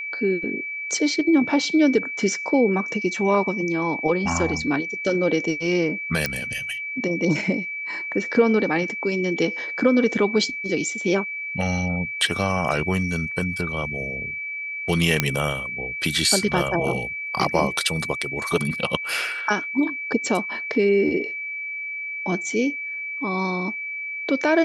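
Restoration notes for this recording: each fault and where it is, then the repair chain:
whistle 2,300 Hz −28 dBFS
0:06.26: click −8 dBFS
0:15.20: click −2 dBFS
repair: click removal
notch filter 2,300 Hz, Q 30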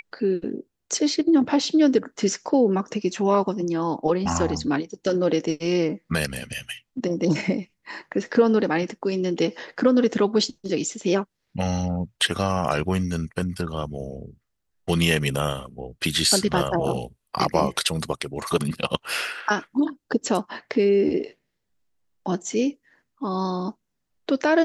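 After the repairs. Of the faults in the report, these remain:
none of them is left

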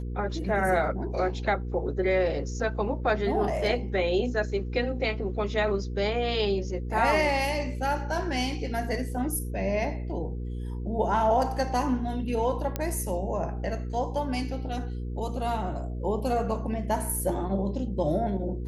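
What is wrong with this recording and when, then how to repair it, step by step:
mains hum 60 Hz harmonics 8 −33 dBFS
0:12.76: click −14 dBFS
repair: click removal
hum removal 60 Hz, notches 8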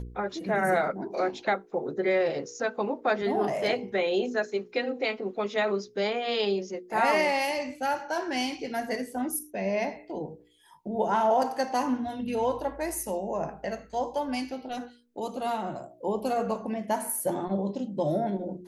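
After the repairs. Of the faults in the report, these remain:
none of them is left

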